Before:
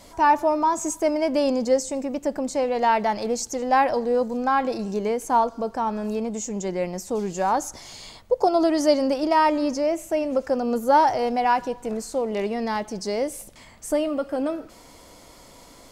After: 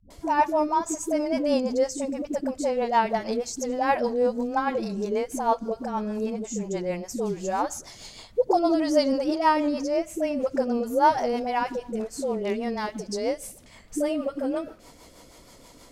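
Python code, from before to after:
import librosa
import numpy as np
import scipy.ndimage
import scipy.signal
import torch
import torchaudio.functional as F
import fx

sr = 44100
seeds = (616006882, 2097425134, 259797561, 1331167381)

y = fx.dispersion(x, sr, late='highs', ms=104.0, hz=330.0)
y = fx.rotary(y, sr, hz=6.3)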